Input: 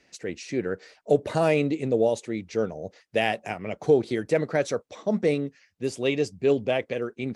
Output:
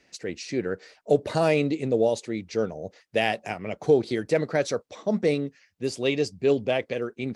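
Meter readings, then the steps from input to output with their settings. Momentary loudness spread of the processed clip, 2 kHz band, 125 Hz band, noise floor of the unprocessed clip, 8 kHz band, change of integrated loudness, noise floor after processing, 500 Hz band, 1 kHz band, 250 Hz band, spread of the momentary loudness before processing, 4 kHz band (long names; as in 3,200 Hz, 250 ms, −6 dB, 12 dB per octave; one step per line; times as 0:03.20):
11 LU, +0.5 dB, 0.0 dB, −67 dBFS, +1.5 dB, 0.0 dB, −67 dBFS, 0.0 dB, 0.0 dB, 0.0 dB, 11 LU, +2.0 dB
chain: dynamic equaliser 4,600 Hz, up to +6 dB, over −53 dBFS, Q 2.5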